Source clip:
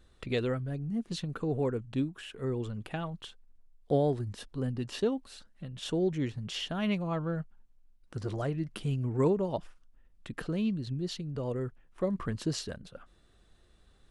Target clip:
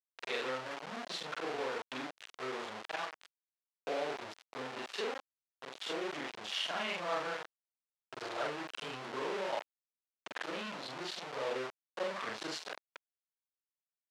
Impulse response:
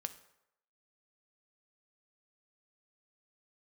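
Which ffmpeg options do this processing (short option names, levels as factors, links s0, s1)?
-af "afftfilt=real='re':imag='-im':win_size=4096:overlap=0.75,alimiter=level_in=1.78:limit=0.0631:level=0:latency=1:release=141,volume=0.562,aeval=exprs='val(0)*gte(abs(val(0)),0.00944)':c=same,highpass=640,lowpass=4600,volume=2.51"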